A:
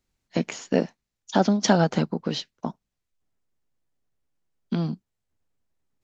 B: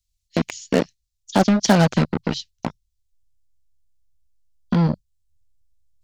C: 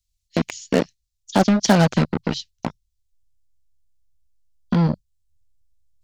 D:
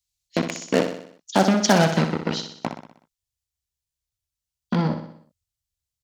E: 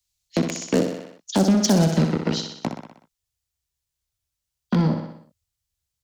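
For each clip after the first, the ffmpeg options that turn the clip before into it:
-filter_complex "[0:a]asubboost=boost=3.5:cutoff=170,acrossover=split=100|3100[s0][s1][s2];[s1]acrusher=bits=3:mix=0:aa=0.5[s3];[s0][s3][s2]amix=inputs=3:normalize=0,volume=1.5"
-af anull
-filter_complex "[0:a]highpass=f=230:p=1,asplit=2[s0][s1];[s1]aecho=0:1:62|124|186|248|310|372:0.398|0.207|0.108|0.056|0.0291|0.0151[s2];[s0][s2]amix=inputs=2:normalize=0"
-filter_complex "[0:a]acrossover=split=200|500|4600[s0][s1][s2][s3];[s2]acompressor=threshold=0.02:ratio=6[s4];[s0][s1][s4][s3]amix=inputs=4:normalize=0,asoftclip=type=tanh:threshold=0.211,volume=1.58"

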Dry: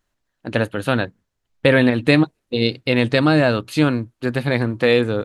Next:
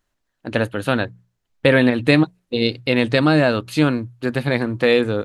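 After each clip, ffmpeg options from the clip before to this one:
-af "bandreject=f=60:t=h:w=6,bandreject=f=120:t=h:w=6,bandreject=f=180:t=h:w=6"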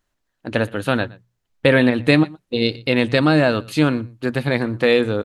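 -af "aecho=1:1:119:0.0708"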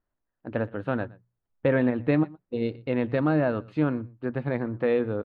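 -af "lowpass=1400,volume=0.422"

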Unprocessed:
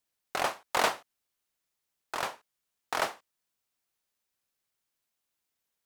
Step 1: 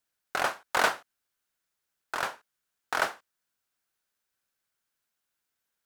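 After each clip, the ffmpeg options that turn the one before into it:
-af "equalizer=f=1500:t=o:w=0.39:g=7.5"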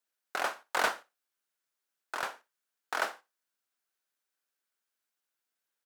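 -filter_complex "[0:a]acrossover=split=190|5300[s0][s1][s2];[s0]acrusher=bits=5:dc=4:mix=0:aa=0.000001[s3];[s3][s1][s2]amix=inputs=3:normalize=0,aecho=1:1:60|120:0.106|0.0244,volume=0.631"

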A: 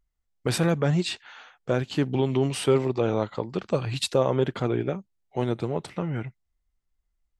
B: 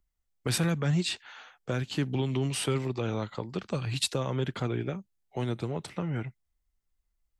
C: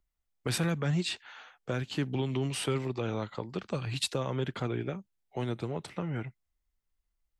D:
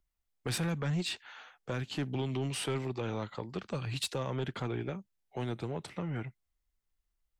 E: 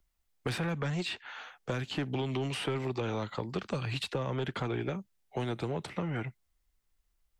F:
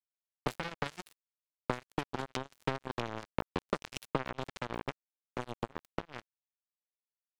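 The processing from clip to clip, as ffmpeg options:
-filter_complex "[0:a]highshelf=f=6600:g=4.5,acrossover=split=250|1200[s0][s1][s2];[s1]acompressor=threshold=0.0251:ratio=6[s3];[s0][s3][s2]amix=inputs=3:normalize=0,volume=0.794"
-af "bass=f=250:g=-2,treble=f=4000:g=-3,volume=0.891"
-af "asoftclip=type=tanh:threshold=0.0596,volume=0.891"
-filter_complex "[0:a]acrossover=split=360|3300[s0][s1][s2];[s0]acompressor=threshold=0.01:ratio=4[s3];[s1]acompressor=threshold=0.01:ratio=4[s4];[s2]acompressor=threshold=0.00178:ratio=4[s5];[s3][s4][s5]amix=inputs=3:normalize=0,volume=2"
-af "acrusher=bits=3:mix=0:aa=0.5,volume=1.58"

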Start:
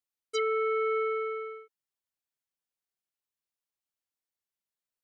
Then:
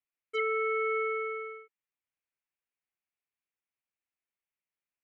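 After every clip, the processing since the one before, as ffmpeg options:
-af "highshelf=f=3400:t=q:w=3:g=-11.5,volume=0.708"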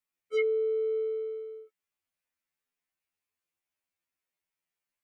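-af "adynamicequalizer=threshold=0.00562:dfrequency=420:dqfactor=2.4:tfrequency=420:tqfactor=2.4:attack=5:release=100:ratio=0.375:range=2.5:mode=cutabove:tftype=bell,afftfilt=real='re*2*eq(mod(b,4),0)':imag='im*2*eq(mod(b,4),0)':win_size=2048:overlap=0.75,volume=1.88"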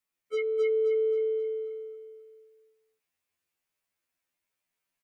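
-filter_complex "[0:a]acompressor=threshold=0.0316:ratio=4,asplit=2[s0][s1];[s1]aecho=0:1:264|528|792|1056|1320:0.708|0.29|0.119|0.0488|0.02[s2];[s0][s2]amix=inputs=2:normalize=0,volume=1.33"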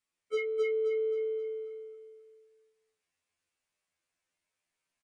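-filter_complex "[0:a]asplit=2[s0][s1];[s1]adelay=33,volume=0.398[s2];[s0][s2]amix=inputs=2:normalize=0,aresample=22050,aresample=44100"

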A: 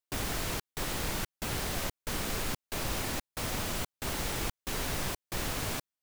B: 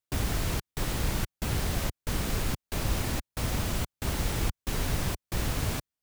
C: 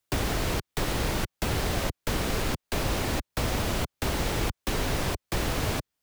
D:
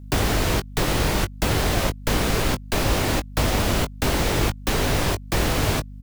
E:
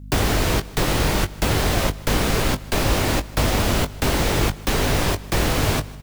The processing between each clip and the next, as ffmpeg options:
-af "equalizer=f=61:w=0.32:g=10"
-filter_complex "[0:a]acrossover=split=130|300|700|5700[s0][s1][s2][s3][s4];[s0]acompressor=threshold=0.0112:ratio=4[s5];[s1]acompressor=threshold=0.00398:ratio=4[s6];[s2]acompressor=threshold=0.00891:ratio=4[s7];[s3]acompressor=threshold=0.00794:ratio=4[s8];[s4]acompressor=threshold=0.00316:ratio=4[s9];[s5][s6][s7][s8][s9]amix=inputs=5:normalize=0,volume=2.82"
-filter_complex "[0:a]aeval=exprs='val(0)+0.00562*(sin(2*PI*50*n/s)+sin(2*PI*2*50*n/s)/2+sin(2*PI*3*50*n/s)/3+sin(2*PI*4*50*n/s)/4+sin(2*PI*5*50*n/s)/5)':c=same,asplit=2[s0][s1];[s1]adelay=20,volume=0.316[s2];[s0][s2]amix=inputs=2:normalize=0,volume=2"
-af "aecho=1:1:153|306|459|612:0.0891|0.0472|0.025|0.0133,volume=1.19"

